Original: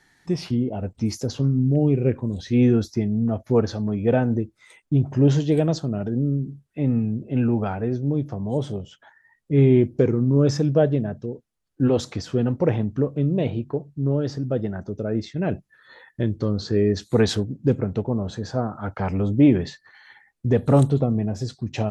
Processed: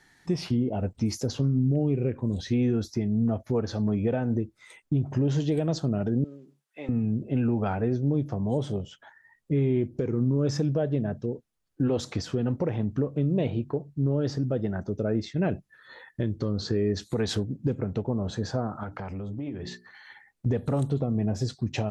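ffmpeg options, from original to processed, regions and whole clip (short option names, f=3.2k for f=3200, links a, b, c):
-filter_complex "[0:a]asettb=1/sr,asplit=3[a][b][c];[a]atrim=end=6.244[d];[b]atrim=start=6.24:end=6.89,asetpts=PTS-STARTPTS,afade=t=in:d=0.004:c=qsin,afade=t=out:st=0.646:d=0.004:c=qsin,highpass=740,asplit=2[e][f];[f]adelay=13,volume=-13dB[g];[e][g]amix=inputs=2:normalize=0,atrim=end_sample=28665[h];[c]atrim=start=6.886[i];[d][h]acrossfade=d=0.004:c1=hsin:c2=qsin[j];[j][i]acrossfade=d=0.004:c1=qsin:c2=hsin,asettb=1/sr,asplit=3[k][l][m];[k]atrim=end=18.834[n];[l]atrim=start=18.83:end=20.46,asetpts=PTS-STARTPTS,afade=t=in:d=0.004:c=qsin,afade=t=out:st=1.626:d=0.004:c=qsin,bandreject=f=60:t=h:w=6,bandreject=f=120:t=h:w=6,bandreject=f=180:t=h:w=6,bandreject=f=240:t=h:w=6,bandreject=f=300:t=h:w=6,bandreject=f=360:t=h:w=6,bandreject=f=420:t=h:w=6,acompressor=threshold=-32dB:ratio=6:attack=3.2:release=140:knee=1:detection=peak[o];[m]atrim=start=20.456[p];[n][o]acrossfade=d=0.004:c1=hsin:c2=qsin[q];[q][p]acrossfade=d=0.004:c1=qsin:c2=hsin,acompressor=threshold=-20dB:ratio=2.5,alimiter=limit=-16dB:level=0:latency=1:release=248"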